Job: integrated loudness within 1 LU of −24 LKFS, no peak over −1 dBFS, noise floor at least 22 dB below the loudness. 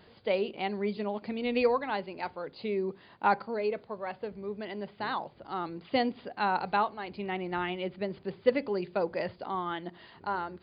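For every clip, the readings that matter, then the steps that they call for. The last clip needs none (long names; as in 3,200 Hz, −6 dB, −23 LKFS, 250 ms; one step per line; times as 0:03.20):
integrated loudness −32.5 LKFS; sample peak −12.0 dBFS; target loudness −24.0 LKFS
→ level +8.5 dB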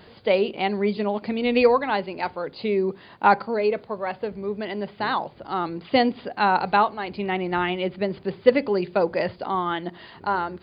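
integrated loudness −24.0 LKFS; sample peak −3.5 dBFS; background noise floor −49 dBFS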